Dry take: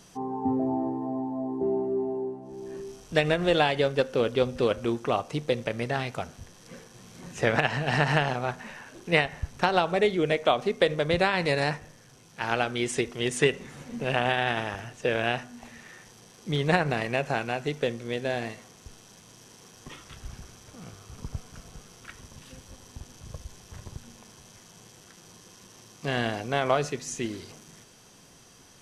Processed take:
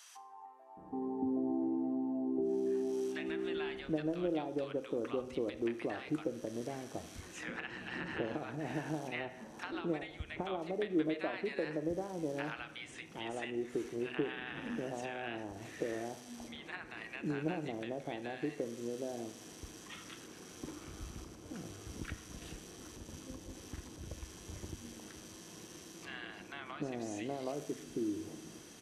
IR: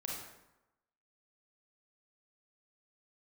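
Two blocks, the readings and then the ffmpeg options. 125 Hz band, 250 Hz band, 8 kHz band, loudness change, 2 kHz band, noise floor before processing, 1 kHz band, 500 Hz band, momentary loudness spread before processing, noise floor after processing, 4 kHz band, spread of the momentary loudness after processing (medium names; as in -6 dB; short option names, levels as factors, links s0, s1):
-14.5 dB, -5.5 dB, -9.0 dB, -12.5 dB, -14.5 dB, -54 dBFS, -15.5 dB, -11.0 dB, 22 LU, -53 dBFS, -15.5 dB, 14 LU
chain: -filter_complex "[0:a]acrossover=split=3400[s0][s1];[s1]acompressor=threshold=0.00501:ratio=4:attack=1:release=60[s2];[s0][s2]amix=inputs=2:normalize=0,highpass=40,acompressor=threshold=0.00794:ratio=2.5,equalizer=f=125:t=o:w=0.33:g=-8,equalizer=f=315:t=o:w=0.33:g=12,equalizer=f=5000:t=o:w=0.33:g=-3,acrossover=split=960[s3][s4];[s3]adelay=770[s5];[s5][s4]amix=inputs=2:normalize=0,asplit=2[s6][s7];[1:a]atrim=start_sample=2205,asetrate=48510,aresample=44100[s8];[s7][s8]afir=irnorm=-1:irlink=0,volume=0.335[s9];[s6][s9]amix=inputs=2:normalize=0,volume=0.841"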